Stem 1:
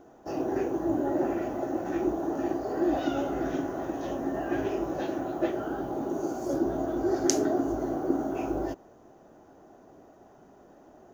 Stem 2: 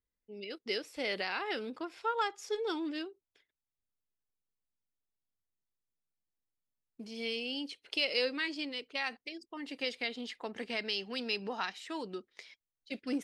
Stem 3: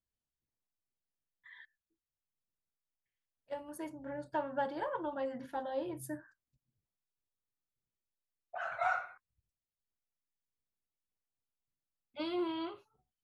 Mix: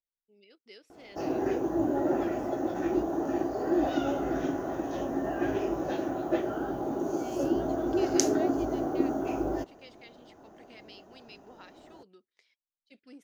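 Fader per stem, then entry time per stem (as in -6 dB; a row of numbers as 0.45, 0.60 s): 0.0 dB, -16.5 dB, off; 0.90 s, 0.00 s, off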